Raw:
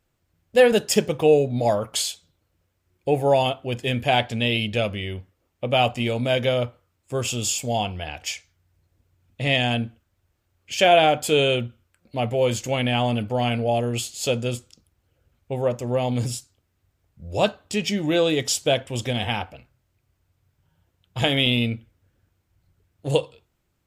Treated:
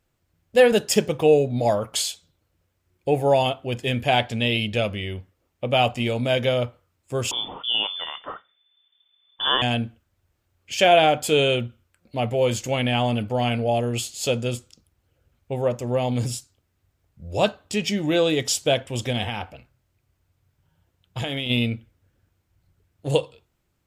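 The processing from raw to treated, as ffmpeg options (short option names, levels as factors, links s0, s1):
-filter_complex "[0:a]asettb=1/sr,asplit=3[s0][s1][s2];[s0]atrim=end=7.314[s3];[s1]atrim=start=7.31:end=9.62,asetpts=PTS-STARTPTS,afade=t=in:d=0.004:c=qsin,afade=t=out:st=2.306:d=0.004:c=qsin,lowpass=f=3100:t=q:w=0.5098,lowpass=f=3100:t=q:w=0.6013,lowpass=f=3100:t=q:w=0.9,lowpass=f=3100:t=q:w=2.563,afreqshift=-3600[s4];[s2]atrim=start=9.616[s5];[s3][s4]acrossfade=d=0.004:c1=hsin:c2=qsin[s6];[s6][s5]acrossfade=d=0.004:c1=qsin:c2=hsin,asplit=3[s7][s8][s9];[s7]afade=t=out:st=19.26:d=0.02[s10];[s8]acompressor=threshold=0.0631:ratio=6:attack=3.2:release=140:knee=1:detection=peak,afade=t=in:st=19.26:d=0.02,afade=t=out:st=21.49:d=0.02[s11];[s9]afade=t=in:st=21.49:d=0.02[s12];[s10][s11][s12]amix=inputs=3:normalize=0"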